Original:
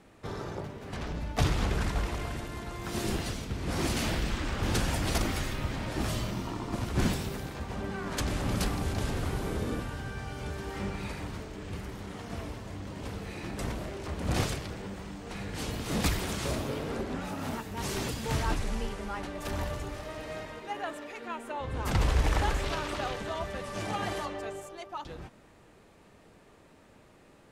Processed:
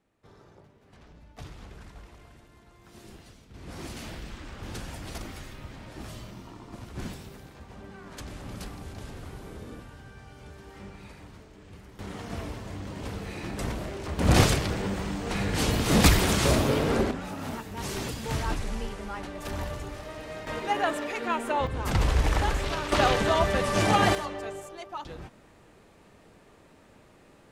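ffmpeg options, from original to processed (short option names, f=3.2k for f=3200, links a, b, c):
-af "asetnsamples=n=441:p=0,asendcmd='3.54 volume volume -9.5dB;11.99 volume volume 2.5dB;14.19 volume volume 9.5dB;17.11 volume volume 0dB;20.47 volume volume 9.5dB;21.67 volume volume 2dB;22.92 volume volume 11.5dB;24.15 volume volume 1.5dB',volume=-17dB"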